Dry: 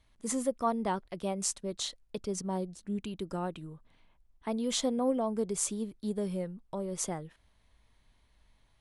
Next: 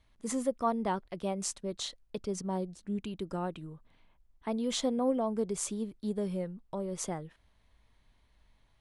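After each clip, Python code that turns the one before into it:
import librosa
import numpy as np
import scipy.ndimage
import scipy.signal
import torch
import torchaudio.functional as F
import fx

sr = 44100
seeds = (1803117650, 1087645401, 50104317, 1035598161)

y = fx.high_shelf(x, sr, hz=6500.0, db=-6.5)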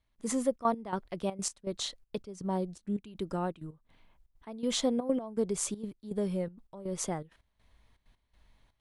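y = fx.step_gate(x, sr, bpm=162, pattern='..xxxx.x', floor_db=-12.0, edge_ms=4.5)
y = y * 10.0 ** (2.0 / 20.0)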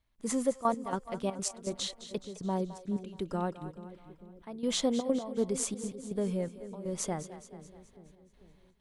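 y = fx.echo_split(x, sr, split_hz=500.0, low_ms=443, high_ms=212, feedback_pct=52, wet_db=-13)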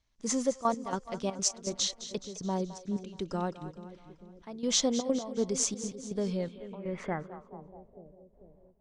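y = fx.filter_sweep_lowpass(x, sr, from_hz=6000.0, to_hz=620.0, start_s=6.14, end_s=7.94, q=3.5)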